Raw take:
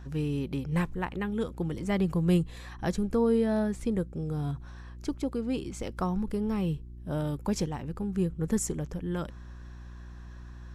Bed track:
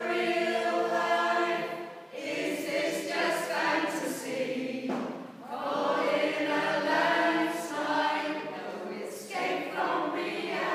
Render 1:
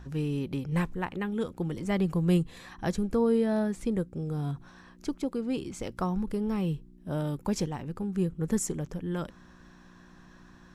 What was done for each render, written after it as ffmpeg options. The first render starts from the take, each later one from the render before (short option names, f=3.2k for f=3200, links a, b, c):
-af "bandreject=f=60:t=h:w=4,bandreject=f=120:t=h:w=4"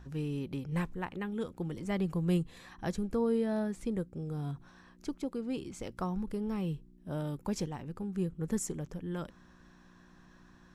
-af "volume=-5dB"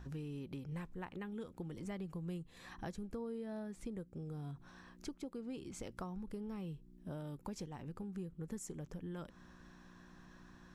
-af "acompressor=threshold=-43dB:ratio=4"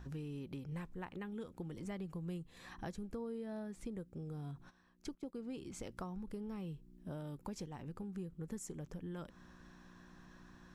-filter_complex "[0:a]asplit=3[a][b][c];[a]afade=t=out:st=4.69:d=0.02[d];[b]agate=range=-13dB:threshold=-53dB:ratio=16:release=100:detection=peak,afade=t=in:st=4.69:d=0.02,afade=t=out:st=5.33:d=0.02[e];[c]afade=t=in:st=5.33:d=0.02[f];[d][e][f]amix=inputs=3:normalize=0"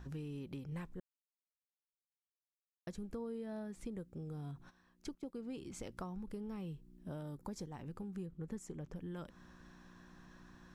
-filter_complex "[0:a]asettb=1/sr,asplit=3[a][b][c];[a]atrim=end=7.234[d];[b]atrim=start=7.23:end=7.74,asetpts=PTS-STARTPTS,afade=t=in:d=0.004:c=qsin,afade=t=out:st=0.506:d=0.004:c=qsin,equalizer=f=2.7k:w=2.9:g=-10.5[e];[c]atrim=start=7.736[f];[d][e]acrossfade=d=0.004:c1=hsin:c2=qsin[g];[g][f]acrossfade=d=0.004:c1=qsin:c2=hsin,asettb=1/sr,asplit=3[h][i][j];[h]atrim=end=8.264[k];[i]atrim=start=8.26:end=8.96,asetpts=PTS-STARTPTS,afade=t=in:d=0.004:c=qsin,afade=t=out:st=0.696:d=0.004:c=qsin,aemphasis=mode=reproduction:type=cd[l];[j]atrim=start=8.956[m];[k][l]acrossfade=d=0.004:c1=hsin:c2=qsin[n];[n][m]acrossfade=d=0.004:c1=qsin:c2=hsin,asplit=3[o][p][q];[o]atrim=end=1,asetpts=PTS-STARTPTS,afade=t=out:st=0.996:d=0.004:c=hsin[r];[p]atrim=start=1:end=2.87,asetpts=PTS-STARTPTS,volume=0[s];[q]atrim=start=2.87,asetpts=PTS-STARTPTS,afade=t=in:d=0.004:c=hsin[t];[r][s][t]concat=n=3:v=0:a=1"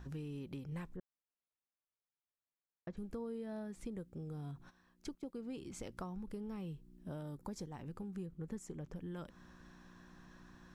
-filter_complex "[0:a]asettb=1/sr,asplit=3[a][b][c];[a]atrim=end=0.964[d];[b]atrim=start=0.96:end=2.97,asetpts=PTS-STARTPTS,afade=t=in:d=0.004:c=qsin,afade=t=out:st=2.006:d=0.004:c=qsin,lowpass=2.1k[e];[c]atrim=start=2.966[f];[d][e]acrossfade=d=0.004:c1=hsin:c2=qsin[g];[g][f]acrossfade=d=0.004:c1=qsin:c2=hsin"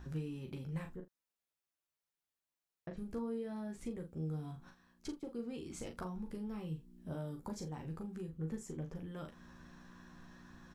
-filter_complex "[0:a]asplit=2[a][b];[b]adelay=38,volume=-7dB[c];[a][c]amix=inputs=2:normalize=0,asplit=2[d][e];[e]aecho=0:1:13|44:0.501|0.2[f];[d][f]amix=inputs=2:normalize=0"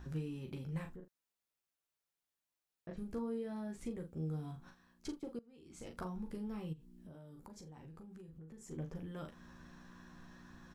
-filter_complex "[0:a]asettb=1/sr,asplit=3[a][b][c];[a]atrim=end=0.914[d];[b]atrim=start=0.91:end=2.89,asetpts=PTS-STARTPTS,afade=t=in:d=0.004:c=qsin,afade=t=out:st=1.976:d=0.004:c=qsin,acompressor=threshold=-47dB:ratio=3:attack=3.2:release=140:knee=1:detection=peak[e];[c]atrim=start=2.886[f];[d][e]acrossfade=d=0.004:c1=hsin:c2=qsin[g];[g][f]acrossfade=d=0.004:c1=qsin:c2=hsin,asplit=3[h][i][j];[h]afade=t=out:st=6.72:d=0.02[k];[i]acompressor=threshold=-50dB:ratio=8:attack=3.2:release=140:knee=1:detection=peak,afade=t=in:st=6.72:d=0.02,afade=t=out:st=8.7:d=0.02[l];[j]afade=t=in:st=8.7:d=0.02[m];[k][l][m]amix=inputs=3:normalize=0,asplit=2[n][o];[n]atrim=end=5.39,asetpts=PTS-STARTPTS,afade=t=out:st=5.386:d=0.004:c=hsin:silence=0.0841395[p];[o]atrim=start=5.39,asetpts=PTS-STARTPTS,afade=t=in:d=0.61:c=qua:silence=0.0841395[q];[p][q]concat=n=2:v=0:a=1"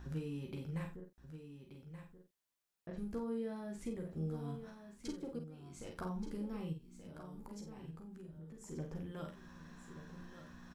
-filter_complex "[0:a]asplit=2[a][b];[b]adelay=49,volume=-7dB[c];[a][c]amix=inputs=2:normalize=0,aecho=1:1:1179:0.299"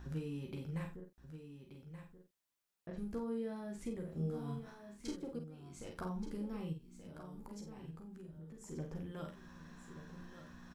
-filter_complex "[0:a]asettb=1/sr,asplit=3[a][b][c];[a]atrim=end=4.054[d];[b]atrim=start=4.05:end=5.16,asetpts=PTS-STARTPTS,afade=t=in:d=0.004:c=qsin,afade=t=out:st=1.106:d=0.004:c=qsin,asplit=2[e][f];[f]adelay=30,volume=-4dB[g];[e][g]amix=inputs=2:normalize=0,atrim=end_sample=48951[h];[c]atrim=start=5.156[i];[d][h]acrossfade=d=0.004:c1=hsin:c2=qsin[j];[j][i]acrossfade=d=0.004:c1=qsin:c2=hsin"